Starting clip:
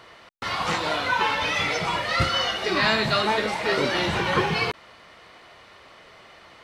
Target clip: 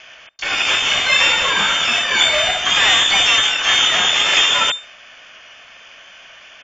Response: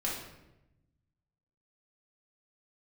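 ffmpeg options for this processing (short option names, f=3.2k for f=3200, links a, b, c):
-filter_complex "[0:a]aeval=exprs='0.355*(cos(1*acos(clip(val(0)/0.355,-1,1)))-cos(1*PI/2))+0.0282*(cos(5*acos(clip(val(0)/0.355,-1,1)))-cos(5*PI/2))+0.1*(cos(6*acos(clip(val(0)/0.355,-1,1)))-cos(6*PI/2))':c=same,lowpass=f=3.1k:t=q:w=0.5098,lowpass=f=3.1k:t=q:w=0.6013,lowpass=f=3.1k:t=q:w=0.9,lowpass=f=3.1k:t=q:w=2.563,afreqshift=-3600,asplit=2[a][b];[b]adelay=73,lowpass=f=1.8k:p=1,volume=-23dB,asplit=2[c][d];[d]adelay=73,lowpass=f=1.8k:p=1,volume=0.36[e];[c][e]amix=inputs=2:normalize=0[f];[a][f]amix=inputs=2:normalize=0,asplit=2[g][h];[h]asetrate=88200,aresample=44100,atempo=0.5,volume=-12dB[i];[g][i]amix=inputs=2:normalize=0,volume=4.5dB"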